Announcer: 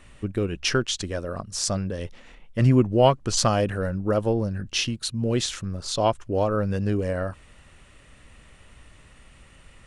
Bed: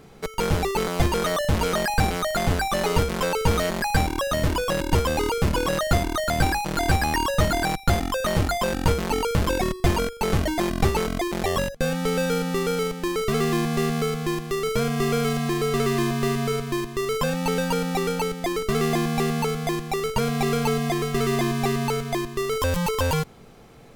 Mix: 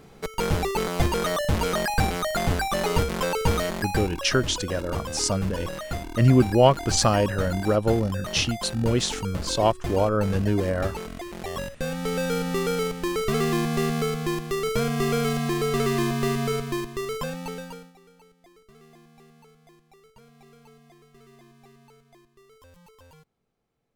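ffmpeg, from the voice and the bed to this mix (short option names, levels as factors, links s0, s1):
-filter_complex "[0:a]adelay=3600,volume=1.12[s0];[1:a]volume=2.51,afade=t=out:st=3.51:d=0.77:silence=0.354813,afade=t=in:st=11.35:d=1.21:silence=0.334965,afade=t=out:st=16.58:d=1.35:silence=0.0354813[s1];[s0][s1]amix=inputs=2:normalize=0"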